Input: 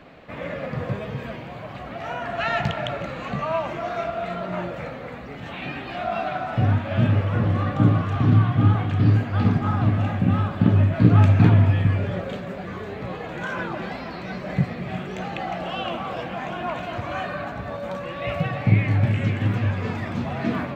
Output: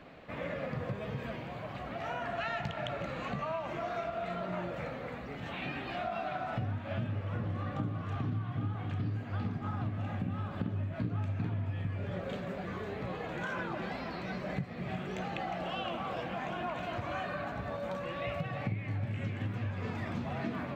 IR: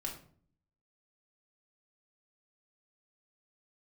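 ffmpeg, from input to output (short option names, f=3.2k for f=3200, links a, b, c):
-af "acompressor=threshold=-27dB:ratio=6,volume=-5.5dB"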